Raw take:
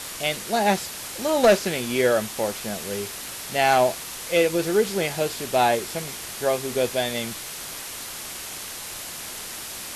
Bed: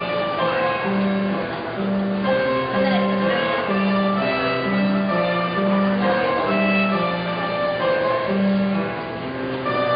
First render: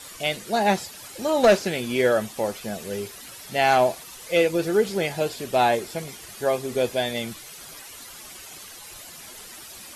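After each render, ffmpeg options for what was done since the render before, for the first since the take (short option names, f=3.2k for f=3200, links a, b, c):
-af "afftdn=nr=11:nf=-36"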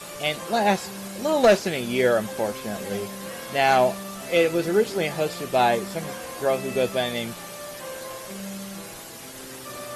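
-filter_complex "[1:a]volume=-17dB[a];[0:a][a]amix=inputs=2:normalize=0"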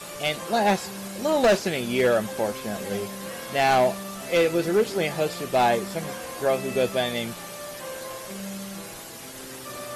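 -af "asoftclip=type=hard:threshold=-14.5dB"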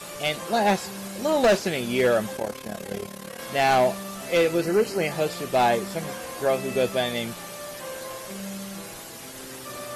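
-filter_complex "[0:a]asplit=3[a][b][c];[a]afade=t=out:st=2.36:d=0.02[d];[b]tremolo=f=36:d=0.824,afade=t=in:st=2.36:d=0.02,afade=t=out:st=3.38:d=0.02[e];[c]afade=t=in:st=3.38:d=0.02[f];[d][e][f]amix=inputs=3:normalize=0,asettb=1/sr,asplit=3[g][h][i];[g]atrim=end=4.614[j];[h]atrim=start=4.61:end=5.12,asetpts=PTS-STARTPTS,afade=t=in:d=0.004:c=qsin,afade=t=out:st=0.506:d=0.004:c=qsin,asuperstop=centerf=3500:order=8:qfactor=5.8[k];[i]atrim=start=5.116[l];[j][k]acrossfade=d=0.004:c1=hsin:c2=qsin[m];[m][l]acrossfade=d=0.004:c1=qsin:c2=hsin"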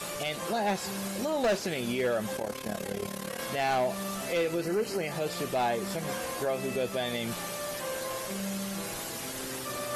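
-af "alimiter=limit=-22.5dB:level=0:latency=1:release=145,areverse,acompressor=mode=upward:threshold=-31dB:ratio=2.5,areverse"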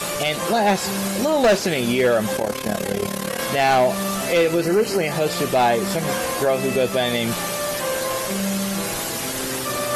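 -af "volume=11dB"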